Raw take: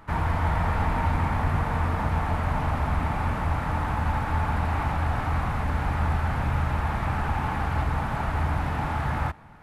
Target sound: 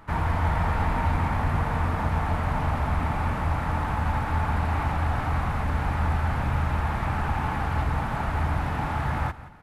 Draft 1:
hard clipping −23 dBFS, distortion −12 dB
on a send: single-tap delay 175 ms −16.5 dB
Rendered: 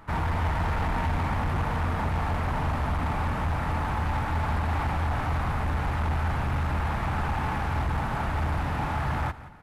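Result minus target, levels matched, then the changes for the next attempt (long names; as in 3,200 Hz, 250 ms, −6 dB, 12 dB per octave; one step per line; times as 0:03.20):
hard clipping: distortion +24 dB
change: hard clipping −15.5 dBFS, distortion −36 dB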